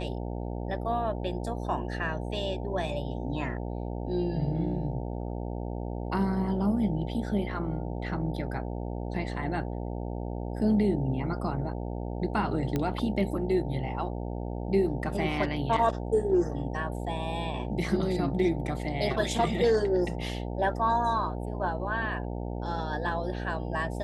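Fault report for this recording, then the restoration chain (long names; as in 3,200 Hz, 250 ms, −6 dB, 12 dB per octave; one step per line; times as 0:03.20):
mains buzz 60 Hz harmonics 15 −34 dBFS
0:12.76: click −16 dBFS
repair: click removal
hum removal 60 Hz, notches 15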